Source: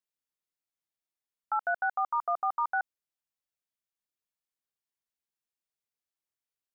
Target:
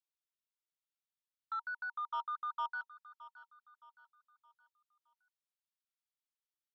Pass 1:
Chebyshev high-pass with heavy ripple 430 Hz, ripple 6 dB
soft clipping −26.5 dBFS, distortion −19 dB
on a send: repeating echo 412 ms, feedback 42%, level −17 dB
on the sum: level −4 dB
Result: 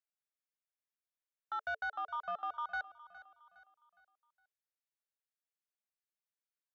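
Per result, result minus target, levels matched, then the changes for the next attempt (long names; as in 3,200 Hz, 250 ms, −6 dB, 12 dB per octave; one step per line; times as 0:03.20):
500 Hz band +14.5 dB; echo 206 ms early
change: Chebyshev high-pass with heavy ripple 910 Hz, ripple 6 dB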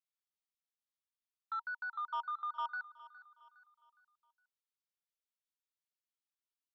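echo 206 ms early
change: repeating echo 618 ms, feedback 42%, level −17 dB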